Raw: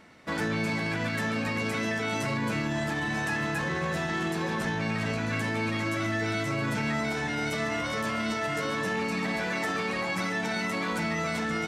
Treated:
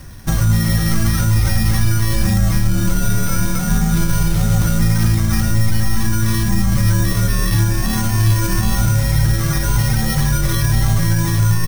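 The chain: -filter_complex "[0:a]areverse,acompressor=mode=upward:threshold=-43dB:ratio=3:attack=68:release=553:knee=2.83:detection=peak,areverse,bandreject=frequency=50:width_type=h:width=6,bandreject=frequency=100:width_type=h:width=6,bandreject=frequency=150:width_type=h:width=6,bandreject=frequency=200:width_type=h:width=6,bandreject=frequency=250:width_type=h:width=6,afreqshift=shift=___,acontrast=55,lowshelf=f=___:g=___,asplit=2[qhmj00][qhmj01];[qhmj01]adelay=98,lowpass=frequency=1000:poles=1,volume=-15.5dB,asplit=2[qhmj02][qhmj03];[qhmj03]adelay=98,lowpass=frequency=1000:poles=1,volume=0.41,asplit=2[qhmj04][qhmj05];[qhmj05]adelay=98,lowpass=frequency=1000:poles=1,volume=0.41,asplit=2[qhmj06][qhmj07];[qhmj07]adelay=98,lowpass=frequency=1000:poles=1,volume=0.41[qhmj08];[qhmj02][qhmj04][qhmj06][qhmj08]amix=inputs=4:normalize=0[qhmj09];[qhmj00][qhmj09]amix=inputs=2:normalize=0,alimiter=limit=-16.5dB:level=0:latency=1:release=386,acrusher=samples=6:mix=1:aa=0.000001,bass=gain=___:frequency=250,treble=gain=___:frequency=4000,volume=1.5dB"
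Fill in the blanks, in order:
-330, 120, 7, 12, 11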